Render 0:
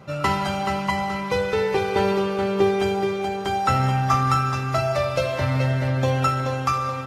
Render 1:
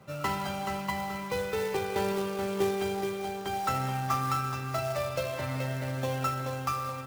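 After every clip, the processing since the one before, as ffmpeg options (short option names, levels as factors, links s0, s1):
-filter_complex "[0:a]acrossover=split=150[s0][s1];[s0]alimiter=level_in=1.68:limit=0.0631:level=0:latency=1,volume=0.596[s2];[s1]acrusher=bits=3:mode=log:mix=0:aa=0.000001[s3];[s2][s3]amix=inputs=2:normalize=0,volume=0.355"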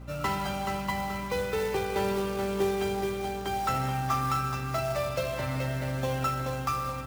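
-filter_complex "[0:a]aeval=exprs='val(0)+0.00631*(sin(2*PI*60*n/s)+sin(2*PI*2*60*n/s)/2+sin(2*PI*3*60*n/s)/3+sin(2*PI*4*60*n/s)/4+sin(2*PI*5*60*n/s)/5)':c=same,asplit=2[s0][s1];[s1]asoftclip=type=hard:threshold=0.0473,volume=0.631[s2];[s0][s2]amix=inputs=2:normalize=0,volume=0.75"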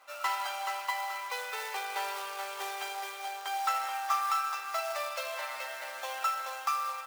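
-af "highpass=f=740:w=0.5412,highpass=f=740:w=1.3066"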